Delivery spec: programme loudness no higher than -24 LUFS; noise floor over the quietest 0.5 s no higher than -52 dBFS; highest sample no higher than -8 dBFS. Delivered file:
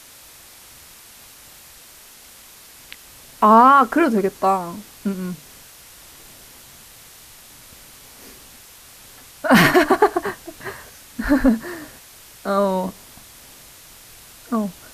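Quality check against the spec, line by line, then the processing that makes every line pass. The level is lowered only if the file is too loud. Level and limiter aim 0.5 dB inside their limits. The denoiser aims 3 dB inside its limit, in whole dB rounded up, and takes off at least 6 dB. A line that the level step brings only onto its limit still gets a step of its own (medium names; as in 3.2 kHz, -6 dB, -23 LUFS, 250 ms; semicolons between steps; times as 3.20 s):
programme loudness -17.5 LUFS: fail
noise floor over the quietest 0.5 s -45 dBFS: fail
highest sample -3.0 dBFS: fail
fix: noise reduction 6 dB, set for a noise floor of -45 dBFS; trim -7 dB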